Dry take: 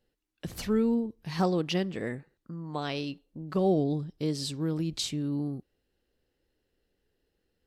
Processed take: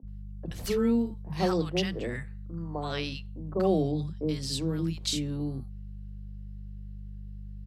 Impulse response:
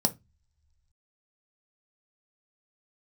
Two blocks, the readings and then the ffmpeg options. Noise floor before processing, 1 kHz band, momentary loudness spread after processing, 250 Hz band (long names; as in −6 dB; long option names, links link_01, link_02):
−80 dBFS, −0.5 dB, 18 LU, −0.5 dB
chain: -filter_complex "[0:a]aeval=exprs='val(0)+0.00891*(sin(2*PI*50*n/s)+sin(2*PI*2*50*n/s)/2+sin(2*PI*3*50*n/s)/3+sin(2*PI*4*50*n/s)/4+sin(2*PI*5*50*n/s)/5)':channel_layout=same,acrossover=split=240|950[link_01][link_02][link_03];[link_01]adelay=30[link_04];[link_03]adelay=80[link_05];[link_04][link_02][link_05]amix=inputs=3:normalize=0,volume=2dB"